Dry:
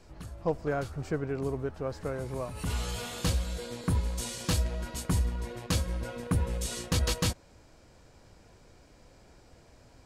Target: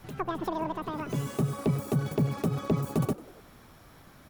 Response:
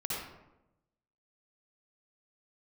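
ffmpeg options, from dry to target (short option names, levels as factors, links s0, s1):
-filter_complex "[0:a]acrossover=split=430[s0][s1];[s1]acompressor=threshold=0.00501:ratio=6[s2];[s0][s2]amix=inputs=2:normalize=0,asplit=5[s3][s4][s5][s6][s7];[s4]adelay=218,afreqshift=31,volume=0.112[s8];[s5]adelay=436,afreqshift=62,volume=0.0596[s9];[s6]adelay=654,afreqshift=93,volume=0.0316[s10];[s7]adelay=872,afreqshift=124,volume=0.0168[s11];[s3][s8][s9][s10][s11]amix=inputs=5:normalize=0,asetrate=103194,aresample=44100,volume=1.33"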